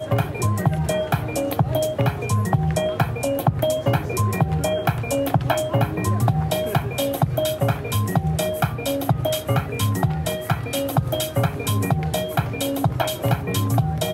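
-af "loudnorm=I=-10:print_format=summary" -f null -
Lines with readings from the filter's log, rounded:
Input Integrated:    -22.4 LUFS
Input True Peak:      -4.6 dBTP
Input LRA:             0.9 LU
Input Threshold:     -32.4 LUFS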